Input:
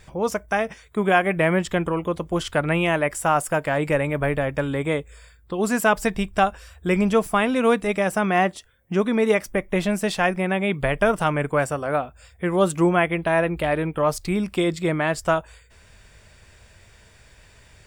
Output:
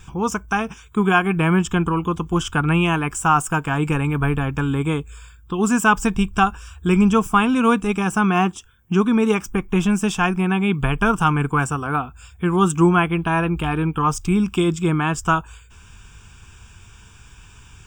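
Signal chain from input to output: dynamic bell 3.6 kHz, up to -4 dB, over -39 dBFS, Q 0.79; static phaser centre 2.9 kHz, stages 8; trim +7.5 dB

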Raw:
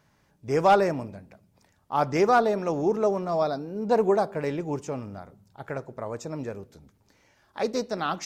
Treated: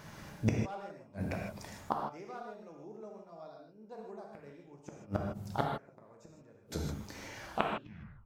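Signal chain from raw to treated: tape stop on the ending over 0.86 s; inverted gate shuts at -29 dBFS, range -40 dB; gated-style reverb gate 180 ms flat, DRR 0 dB; trim +13 dB

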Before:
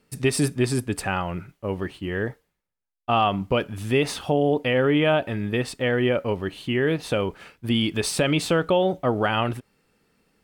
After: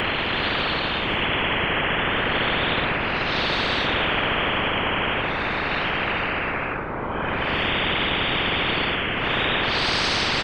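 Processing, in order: chunks repeated in reverse 233 ms, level -13 dB; low-pass 2 kHz 24 dB/octave; dynamic bell 350 Hz, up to -5 dB, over -32 dBFS, Q 0.94; comb 6.4 ms; Paulstretch 6.4×, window 0.05 s, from 6.51 s; whisper effect; frequency-shifting echo 432 ms, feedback 58%, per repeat -120 Hz, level -20 dB; spectrum-flattening compressor 10:1

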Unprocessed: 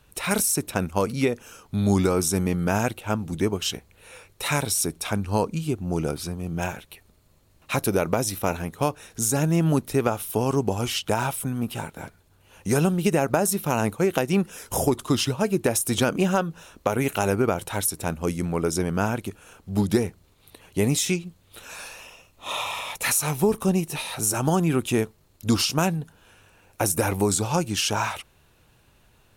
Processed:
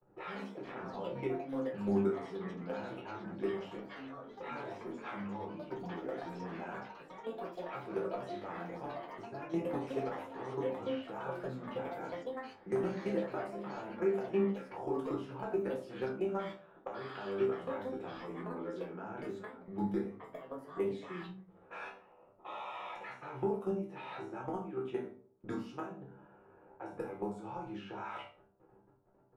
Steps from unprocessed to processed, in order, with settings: high-pass 62 Hz 6 dB/octave; level held to a coarse grid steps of 20 dB; three-band isolator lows -13 dB, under 230 Hz, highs -20 dB, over 2.1 kHz; peak limiter -17.5 dBFS, peak gain reduction 8.5 dB; compression 2:1, threshold -49 dBFS, peak gain reduction 15 dB; level-controlled noise filter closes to 660 Hz, open at -41 dBFS; chord resonator C2 fifth, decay 0.25 s; reverberation RT60 0.50 s, pre-delay 5 ms, DRR -1 dB; ever faster or slower copies 122 ms, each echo +5 st, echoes 3, each echo -6 dB; trim +10 dB

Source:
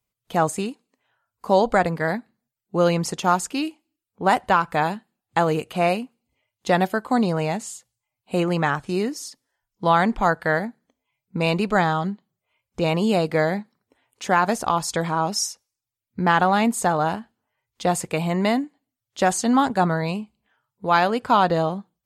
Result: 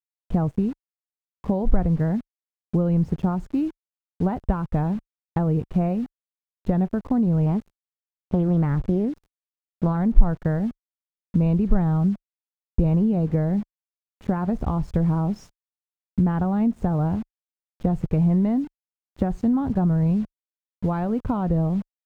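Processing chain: RIAA curve playback; bit crusher 6-bit; compression, threshold -19 dBFS, peak gain reduction 10 dB; tilt EQ -4 dB/octave; 7.46–9.97 s: loudspeaker Doppler distortion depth 0.39 ms; trim -7.5 dB

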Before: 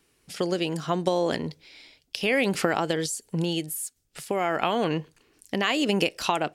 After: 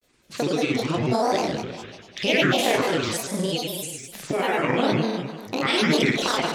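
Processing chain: low-pass 8.8 kHz 12 dB/octave; flutter echo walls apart 6.6 m, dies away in 1.4 s; dynamic bell 870 Hz, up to -7 dB, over -36 dBFS, Q 1.6; granulator, grains 20 per s, spray 33 ms, pitch spread up and down by 7 st; trim +1.5 dB

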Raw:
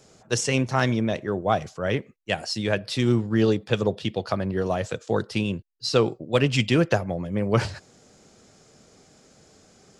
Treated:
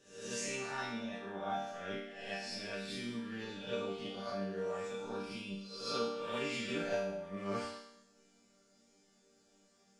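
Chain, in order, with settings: reverse spectral sustain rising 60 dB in 0.72 s; chord resonator G3 minor, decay 0.8 s; trim +5 dB

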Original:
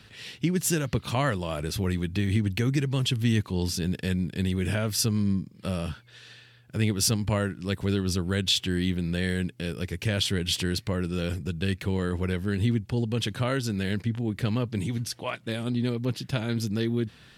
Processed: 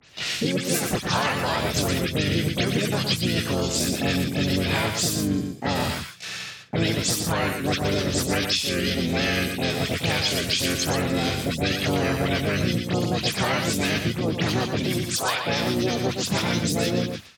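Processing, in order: delay that grows with frequency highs late, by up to 114 ms; gate with hold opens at -38 dBFS; low-pass 10 kHz 12 dB/octave; bass shelf 380 Hz -10.5 dB; compression 12:1, threshold -32 dBFS, peak gain reduction 12.5 dB; harmony voices -5 st -8 dB, +4 st -6 dB, +7 st 0 dB; delay 119 ms -7 dB; three bands compressed up and down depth 40%; trim +8.5 dB

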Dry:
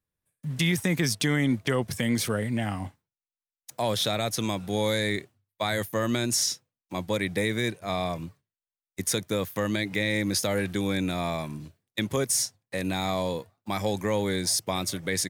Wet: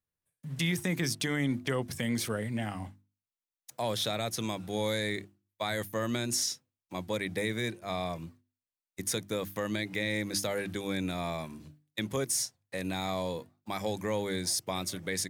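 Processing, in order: hum notches 50/100/150/200/250/300/350 Hz; trim -5 dB

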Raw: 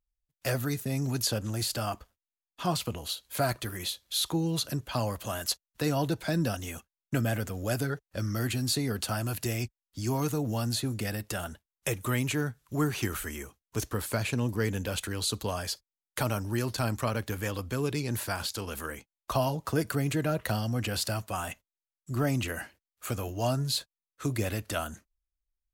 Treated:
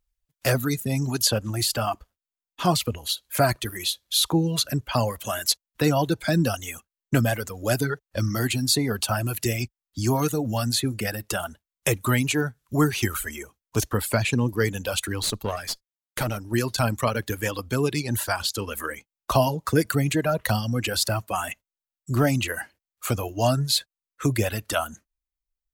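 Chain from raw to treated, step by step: reverb removal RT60 1.8 s; 15.22–16.54 s: valve stage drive 25 dB, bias 0.7; trim +8 dB

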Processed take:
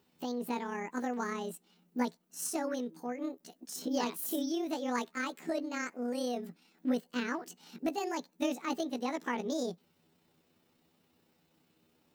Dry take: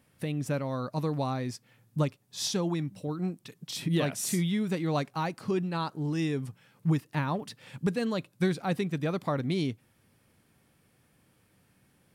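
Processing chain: rotating-head pitch shifter +8.5 st; trim -4 dB

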